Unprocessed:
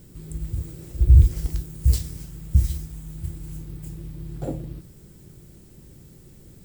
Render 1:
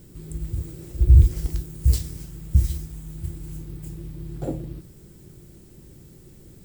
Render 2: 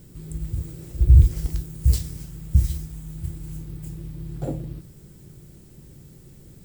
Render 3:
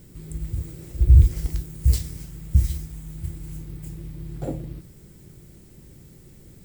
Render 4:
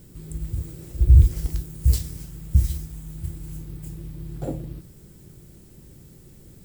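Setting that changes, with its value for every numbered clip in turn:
bell, frequency: 350, 140, 2100, 12000 Hz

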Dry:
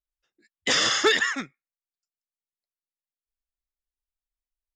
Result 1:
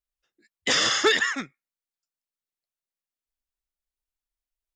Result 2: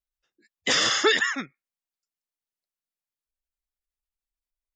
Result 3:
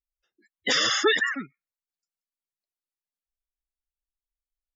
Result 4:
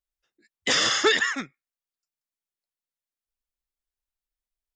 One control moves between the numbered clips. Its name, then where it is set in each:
spectral gate, under each frame's peak: -60, -30, -15, -45 dB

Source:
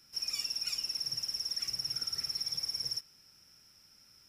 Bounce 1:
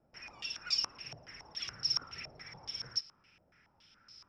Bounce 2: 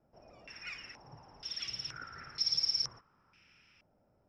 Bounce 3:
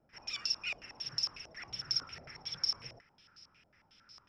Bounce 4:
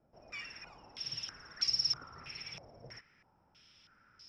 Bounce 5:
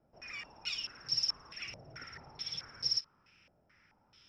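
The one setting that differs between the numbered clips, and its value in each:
stepped low-pass, rate: 7.1, 2.1, 11, 3.1, 4.6 Hz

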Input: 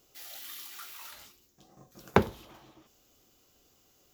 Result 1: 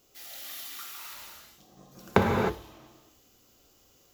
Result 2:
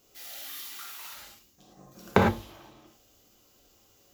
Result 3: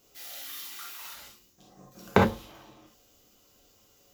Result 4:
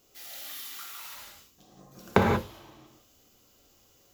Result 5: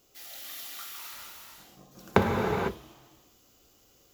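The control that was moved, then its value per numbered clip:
non-linear reverb, gate: 340, 130, 90, 210, 530 ms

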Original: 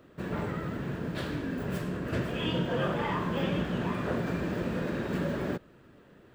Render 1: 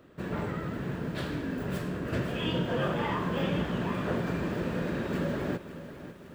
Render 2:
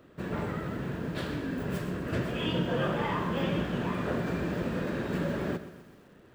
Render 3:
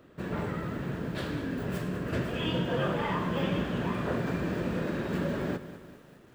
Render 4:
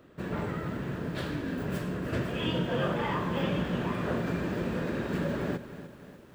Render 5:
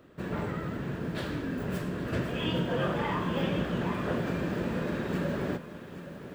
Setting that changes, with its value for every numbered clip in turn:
lo-fi delay, time: 0.55, 0.127, 0.199, 0.297, 0.822 s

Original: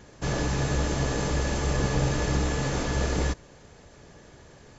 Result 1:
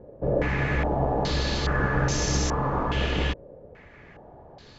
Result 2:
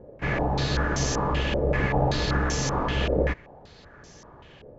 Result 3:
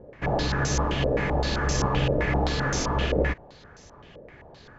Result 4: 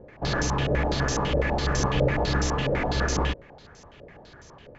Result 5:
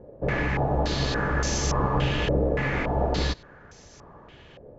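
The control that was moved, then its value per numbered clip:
stepped low-pass, rate: 2.4, 5.2, 7.7, 12, 3.5 Hz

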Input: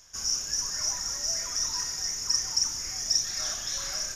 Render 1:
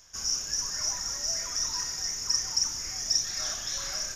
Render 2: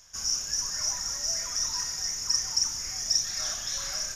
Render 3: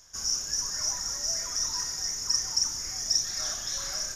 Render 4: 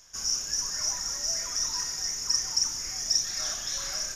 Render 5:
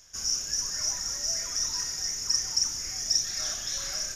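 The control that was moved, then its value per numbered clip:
bell, frequency: 10000, 350, 2600, 84, 1000 Hz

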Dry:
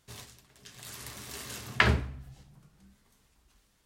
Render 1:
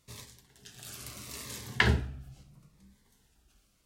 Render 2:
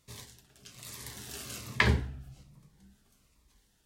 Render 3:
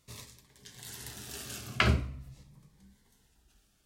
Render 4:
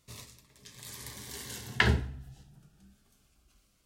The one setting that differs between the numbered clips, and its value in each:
cascading phaser, rate: 0.76, 1.2, 0.45, 0.23 Hz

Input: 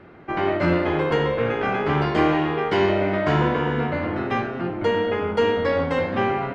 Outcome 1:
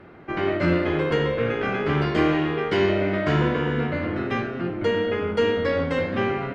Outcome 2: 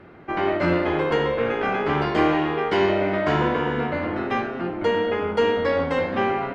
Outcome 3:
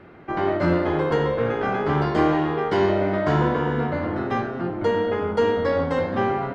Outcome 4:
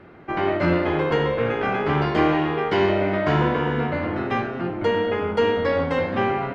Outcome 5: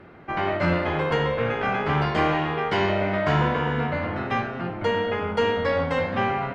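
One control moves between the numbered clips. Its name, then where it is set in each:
dynamic EQ, frequency: 850, 120, 2500, 8300, 340 Hz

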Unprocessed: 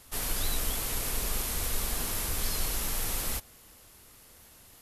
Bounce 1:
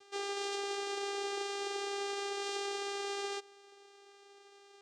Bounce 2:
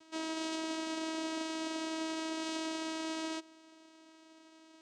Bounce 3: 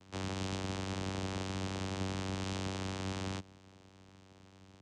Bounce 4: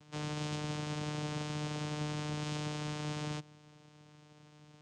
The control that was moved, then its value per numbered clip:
vocoder, frequency: 400, 320, 95, 150 Hz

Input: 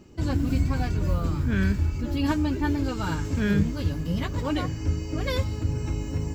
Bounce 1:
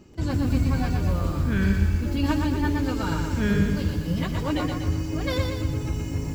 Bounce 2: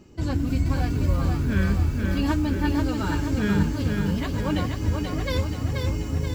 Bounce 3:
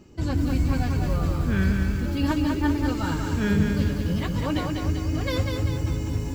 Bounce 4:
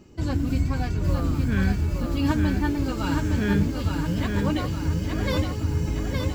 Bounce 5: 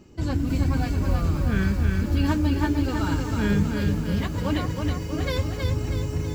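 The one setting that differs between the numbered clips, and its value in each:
lo-fi delay, time: 0.12, 0.482, 0.196, 0.866, 0.321 s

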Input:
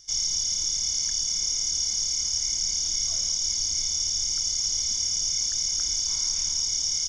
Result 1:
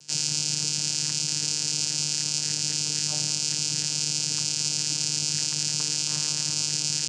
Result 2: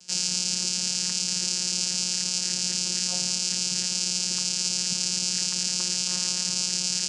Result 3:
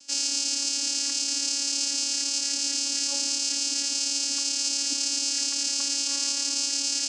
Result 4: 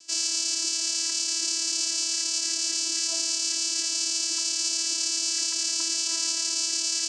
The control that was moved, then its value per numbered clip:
vocoder, frequency: 150, 180, 280, 330 Hz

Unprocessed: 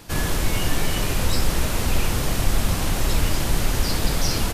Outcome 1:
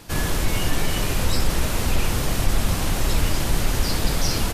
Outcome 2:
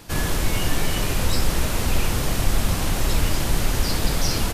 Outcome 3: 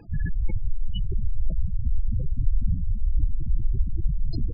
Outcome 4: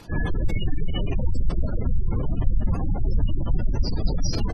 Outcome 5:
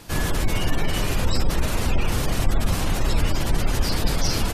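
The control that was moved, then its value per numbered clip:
spectral gate, under each frame's peak: -45, -60, -10, -20, -35 dB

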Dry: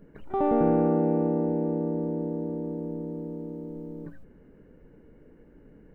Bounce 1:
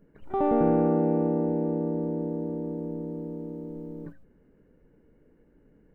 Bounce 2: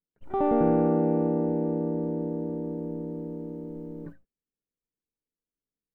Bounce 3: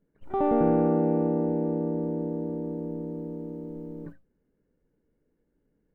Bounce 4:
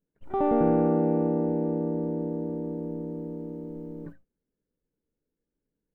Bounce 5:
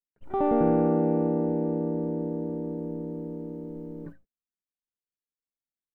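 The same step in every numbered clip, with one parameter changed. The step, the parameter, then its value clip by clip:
gate, range: -7, -46, -20, -32, -58 dB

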